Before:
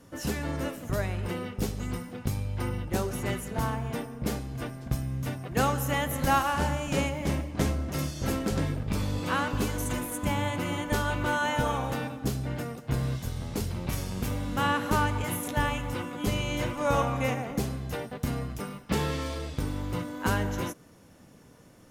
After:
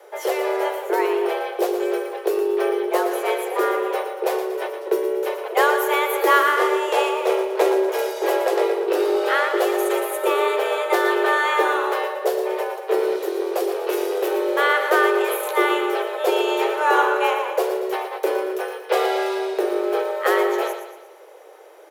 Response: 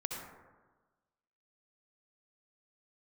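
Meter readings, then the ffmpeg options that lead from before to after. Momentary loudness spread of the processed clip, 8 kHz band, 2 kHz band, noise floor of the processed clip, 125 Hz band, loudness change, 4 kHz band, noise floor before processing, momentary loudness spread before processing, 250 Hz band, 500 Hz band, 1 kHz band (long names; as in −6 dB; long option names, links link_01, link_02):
7 LU, +2.0 dB, +10.5 dB, −40 dBFS, below −40 dB, +9.0 dB, +7.0 dB, −54 dBFS, 7 LU, +3.5 dB, +15.0 dB, +10.0 dB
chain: -filter_complex "[0:a]afreqshift=310,equalizer=frequency=7100:width_type=o:width=1.3:gain=-8.5,asplit=2[link_01][link_02];[link_02]aecho=0:1:117|234|351|468|585:0.355|0.163|0.0751|0.0345|0.0159[link_03];[link_01][link_03]amix=inputs=2:normalize=0,volume=8dB"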